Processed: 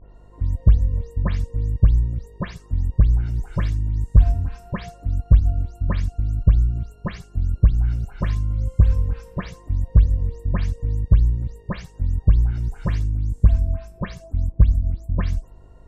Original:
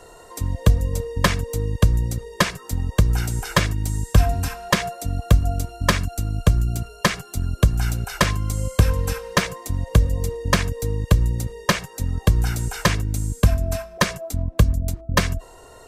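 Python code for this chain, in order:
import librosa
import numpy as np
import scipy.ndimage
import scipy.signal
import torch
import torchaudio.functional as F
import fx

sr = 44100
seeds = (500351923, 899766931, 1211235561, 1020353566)

y = fx.spec_delay(x, sr, highs='late', ms=158)
y = fx.riaa(y, sr, side='playback')
y = fx.dmg_buzz(y, sr, base_hz=50.0, harmonics=22, level_db=-35.0, tilt_db=-9, odd_only=False)
y = y * librosa.db_to_amplitude(-13.0)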